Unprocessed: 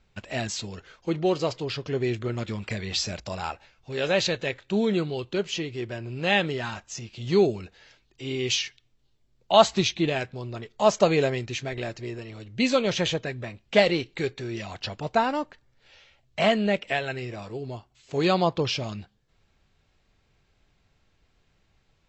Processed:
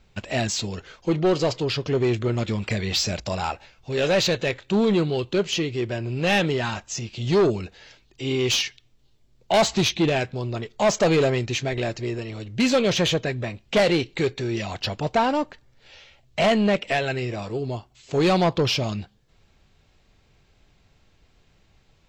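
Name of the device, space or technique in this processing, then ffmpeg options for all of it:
saturation between pre-emphasis and de-emphasis: -af "equalizer=frequency=1500:width_type=o:width=1.1:gain=-2.5,highshelf=frequency=6800:gain=10,asoftclip=type=tanh:threshold=-21dB,highshelf=frequency=6800:gain=-10,volume=7dB"

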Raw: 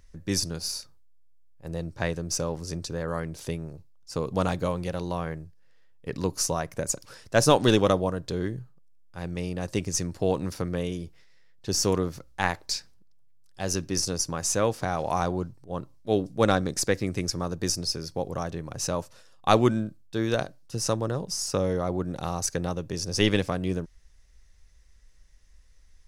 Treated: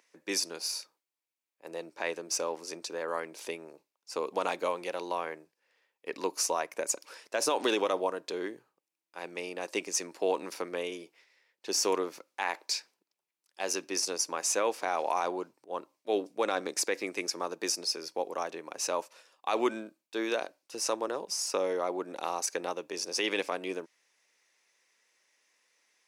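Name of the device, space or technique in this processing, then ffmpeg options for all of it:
laptop speaker: -af "highpass=frequency=320:width=0.5412,highpass=frequency=320:width=1.3066,equalizer=frequency=940:width_type=o:width=0.42:gain=5,equalizer=frequency=2400:width_type=o:width=0.51:gain=7.5,alimiter=limit=-15dB:level=0:latency=1:release=50,volume=-2.5dB"

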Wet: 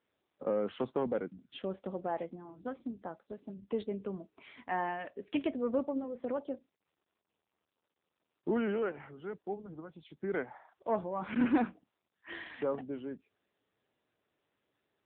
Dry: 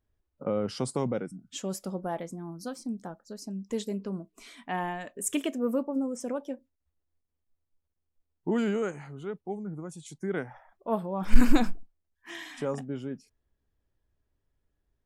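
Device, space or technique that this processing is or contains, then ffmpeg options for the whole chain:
telephone: -af "highpass=260,lowpass=3300,asoftclip=type=tanh:threshold=-19.5dB" -ar 8000 -c:a libopencore_amrnb -b:a 7950

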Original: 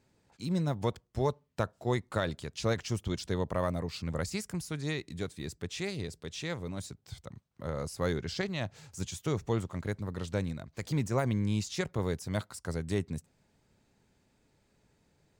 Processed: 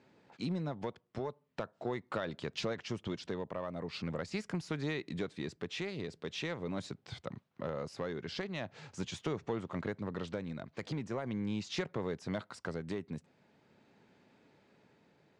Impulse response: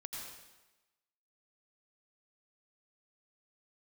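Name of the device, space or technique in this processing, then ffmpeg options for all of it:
AM radio: -af "highpass=180,lowpass=3400,acompressor=threshold=-39dB:ratio=6,asoftclip=type=tanh:threshold=-30.5dB,tremolo=f=0.42:d=0.29,volume=7.5dB"

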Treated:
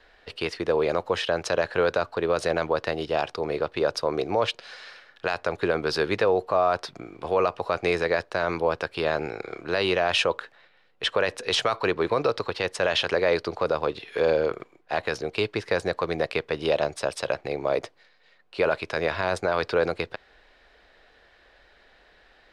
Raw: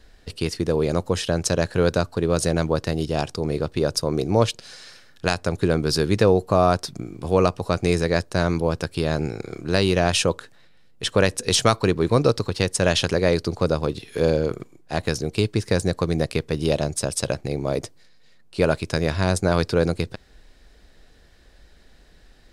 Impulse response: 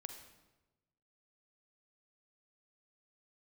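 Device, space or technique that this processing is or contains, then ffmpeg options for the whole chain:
DJ mixer with the lows and highs turned down: -filter_complex "[0:a]acrossover=split=450 3700:gain=0.126 1 0.0891[link_01][link_02][link_03];[link_01][link_02][link_03]amix=inputs=3:normalize=0,alimiter=limit=-17dB:level=0:latency=1:release=25,volume=4.5dB"

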